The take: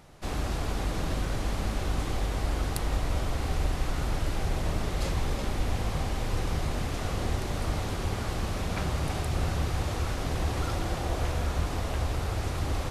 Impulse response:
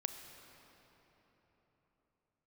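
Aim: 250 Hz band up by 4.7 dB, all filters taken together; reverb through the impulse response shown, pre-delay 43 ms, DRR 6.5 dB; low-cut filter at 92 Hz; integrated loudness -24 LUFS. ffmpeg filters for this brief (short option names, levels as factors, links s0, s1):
-filter_complex "[0:a]highpass=92,equalizer=f=250:t=o:g=6.5,asplit=2[s0][s1];[1:a]atrim=start_sample=2205,adelay=43[s2];[s1][s2]afir=irnorm=-1:irlink=0,volume=0.501[s3];[s0][s3]amix=inputs=2:normalize=0,volume=2.24"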